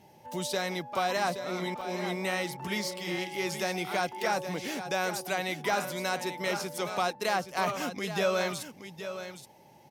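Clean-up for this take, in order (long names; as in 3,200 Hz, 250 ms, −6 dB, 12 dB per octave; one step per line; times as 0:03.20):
repair the gap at 0:01.81, 3.9 ms
echo removal 823 ms −10.5 dB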